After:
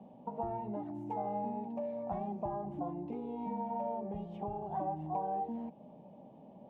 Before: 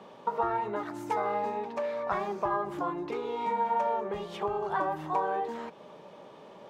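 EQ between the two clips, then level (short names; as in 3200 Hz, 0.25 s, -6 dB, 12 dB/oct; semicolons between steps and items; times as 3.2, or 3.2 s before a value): EQ curve 150 Hz 0 dB, 250 Hz +4 dB, 400 Hz -14 dB, 760 Hz -3 dB, 1300 Hz -30 dB, 2800 Hz -20 dB, 4200 Hz -30 dB; +1.0 dB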